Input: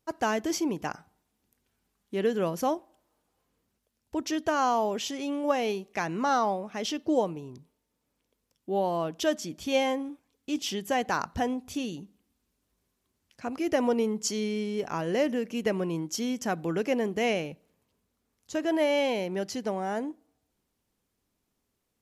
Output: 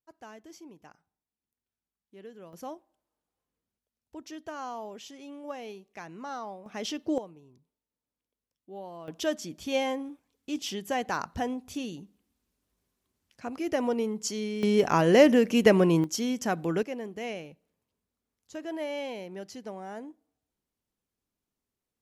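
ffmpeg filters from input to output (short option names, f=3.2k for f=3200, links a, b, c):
-af "asetnsamples=n=441:p=0,asendcmd='2.53 volume volume -12.5dB;6.66 volume volume -2.5dB;7.18 volume volume -14.5dB;9.08 volume volume -2.5dB;14.63 volume volume 8.5dB;16.04 volume volume 1dB;16.83 volume volume -9dB',volume=-20dB"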